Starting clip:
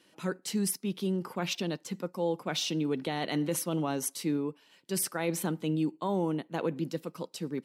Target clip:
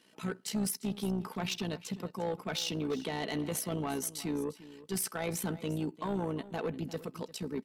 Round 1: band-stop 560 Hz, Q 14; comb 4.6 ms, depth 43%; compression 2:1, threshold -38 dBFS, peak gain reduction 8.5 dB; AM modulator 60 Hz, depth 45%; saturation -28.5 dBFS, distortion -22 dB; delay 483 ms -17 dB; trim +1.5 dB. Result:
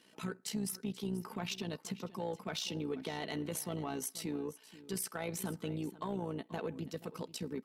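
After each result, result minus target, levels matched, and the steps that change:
compression: peak gain reduction +8.5 dB; echo 134 ms late
remove: compression 2:1, threshold -38 dBFS, peak gain reduction 8.5 dB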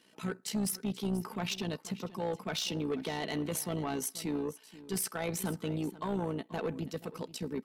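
echo 134 ms late
change: delay 349 ms -17 dB

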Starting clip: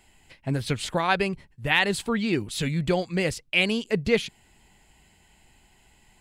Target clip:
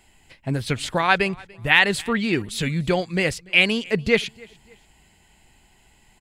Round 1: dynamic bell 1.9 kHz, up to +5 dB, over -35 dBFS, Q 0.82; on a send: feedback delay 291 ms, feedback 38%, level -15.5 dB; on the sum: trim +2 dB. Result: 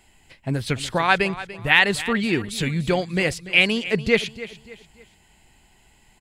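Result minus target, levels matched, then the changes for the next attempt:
echo-to-direct +9.5 dB
change: feedback delay 291 ms, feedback 38%, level -25 dB

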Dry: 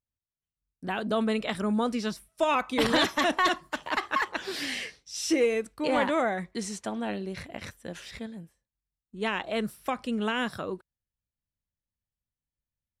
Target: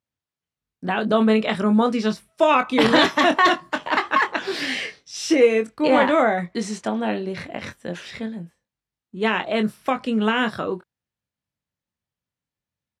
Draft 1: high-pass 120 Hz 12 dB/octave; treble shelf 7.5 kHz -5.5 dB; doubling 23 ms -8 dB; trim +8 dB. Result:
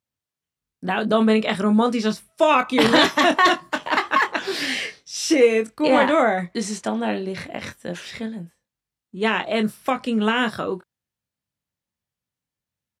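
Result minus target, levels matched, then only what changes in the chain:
8 kHz band +4.0 dB
change: treble shelf 7.5 kHz -15 dB

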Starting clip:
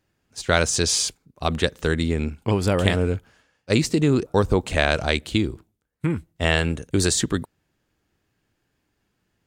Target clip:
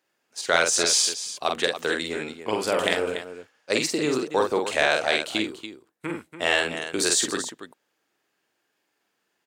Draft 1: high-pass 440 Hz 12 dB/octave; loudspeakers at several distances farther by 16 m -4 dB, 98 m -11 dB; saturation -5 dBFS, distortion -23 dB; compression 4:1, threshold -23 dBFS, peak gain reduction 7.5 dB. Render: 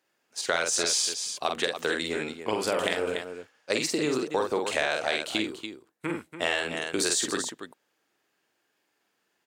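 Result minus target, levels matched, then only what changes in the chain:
compression: peak gain reduction +7.5 dB
remove: compression 4:1, threshold -23 dBFS, peak gain reduction 7.5 dB

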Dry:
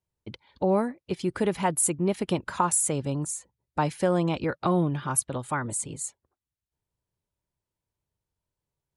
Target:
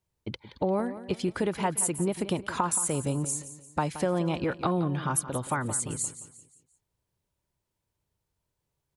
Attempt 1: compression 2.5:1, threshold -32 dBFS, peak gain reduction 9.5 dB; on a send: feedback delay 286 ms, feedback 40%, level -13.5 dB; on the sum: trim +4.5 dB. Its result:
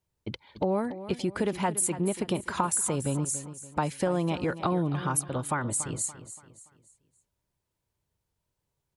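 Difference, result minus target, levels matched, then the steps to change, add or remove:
echo 112 ms late
change: feedback delay 174 ms, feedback 40%, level -13.5 dB

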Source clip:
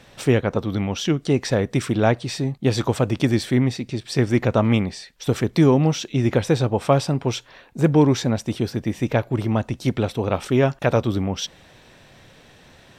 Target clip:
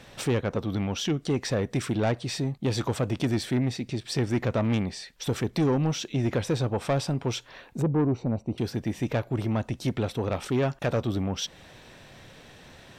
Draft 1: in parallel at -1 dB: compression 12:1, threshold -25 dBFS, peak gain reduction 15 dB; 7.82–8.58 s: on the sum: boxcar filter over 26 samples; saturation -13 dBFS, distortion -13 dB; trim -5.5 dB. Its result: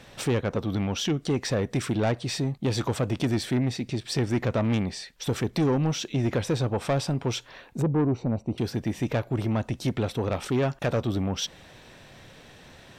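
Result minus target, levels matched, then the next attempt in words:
compression: peak gain reduction -6 dB
in parallel at -1 dB: compression 12:1, threshold -31.5 dBFS, peak gain reduction 21 dB; 7.82–8.58 s: on the sum: boxcar filter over 26 samples; saturation -13 dBFS, distortion -14 dB; trim -5.5 dB

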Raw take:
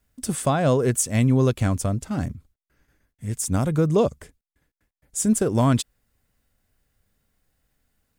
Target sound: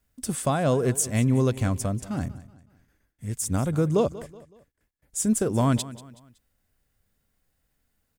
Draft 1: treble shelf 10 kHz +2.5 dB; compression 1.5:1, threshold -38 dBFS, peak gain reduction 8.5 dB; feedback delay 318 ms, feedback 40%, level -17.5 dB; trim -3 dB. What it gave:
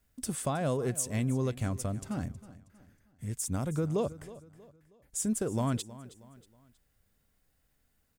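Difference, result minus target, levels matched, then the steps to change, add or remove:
echo 131 ms late; compression: peak gain reduction +8.5 dB
change: feedback delay 187 ms, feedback 40%, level -17.5 dB; remove: compression 1.5:1, threshold -38 dBFS, peak gain reduction 8.5 dB

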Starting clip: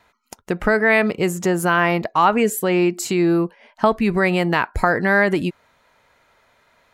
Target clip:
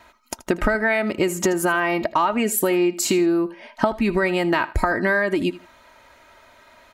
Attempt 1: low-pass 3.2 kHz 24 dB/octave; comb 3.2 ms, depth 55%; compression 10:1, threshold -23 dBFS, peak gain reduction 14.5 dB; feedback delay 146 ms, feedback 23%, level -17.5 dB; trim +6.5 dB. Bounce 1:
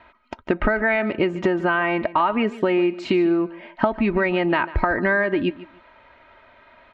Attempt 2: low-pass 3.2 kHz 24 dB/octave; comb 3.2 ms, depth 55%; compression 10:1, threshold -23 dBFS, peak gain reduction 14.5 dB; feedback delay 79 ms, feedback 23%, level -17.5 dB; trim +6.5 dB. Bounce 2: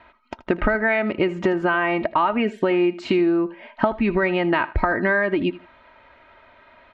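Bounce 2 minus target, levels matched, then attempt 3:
4 kHz band -3.0 dB
comb 3.2 ms, depth 55%; compression 10:1, threshold -23 dBFS, peak gain reduction 14.5 dB; feedback delay 79 ms, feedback 23%, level -17.5 dB; trim +6.5 dB

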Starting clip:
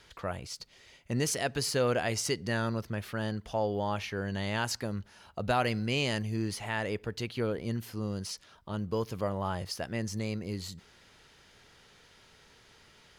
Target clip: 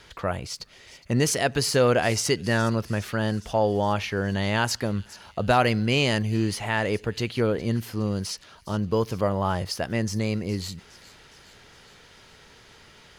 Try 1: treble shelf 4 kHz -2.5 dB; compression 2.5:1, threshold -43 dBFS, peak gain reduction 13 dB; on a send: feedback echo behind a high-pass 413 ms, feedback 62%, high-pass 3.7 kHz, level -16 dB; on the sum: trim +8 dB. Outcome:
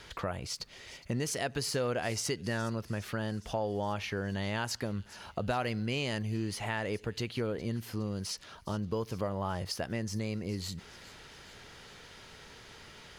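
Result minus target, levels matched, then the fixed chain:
compression: peak gain reduction +13 dB
treble shelf 4 kHz -2.5 dB; on a send: feedback echo behind a high-pass 413 ms, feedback 62%, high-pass 3.7 kHz, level -16 dB; on the sum: trim +8 dB

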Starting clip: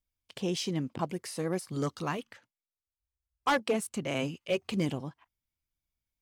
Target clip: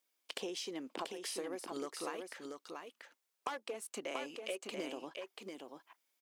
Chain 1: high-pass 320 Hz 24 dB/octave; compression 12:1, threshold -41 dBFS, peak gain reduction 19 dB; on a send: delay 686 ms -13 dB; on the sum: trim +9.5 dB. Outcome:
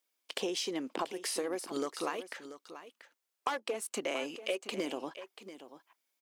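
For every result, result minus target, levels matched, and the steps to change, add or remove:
compression: peak gain reduction -7 dB; echo-to-direct -8 dB
change: compression 12:1, threshold -48.5 dBFS, peak gain reduction 25.5 dB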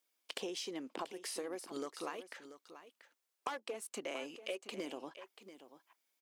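echo-to-direct -8 dB
change: delay 686 ms -5 dB

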